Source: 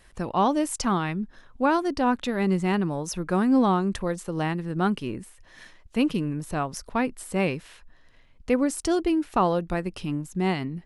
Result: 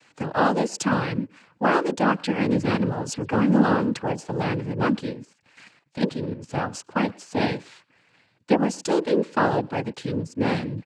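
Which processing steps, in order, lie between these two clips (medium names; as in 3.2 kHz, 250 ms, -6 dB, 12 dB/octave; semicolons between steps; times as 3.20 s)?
speakerphone echo 120 ms, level -23 dB; noise-vocoded speech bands 8; 5.13–6.49 s: level held to a coarse grid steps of 10 dB; trim +2 dB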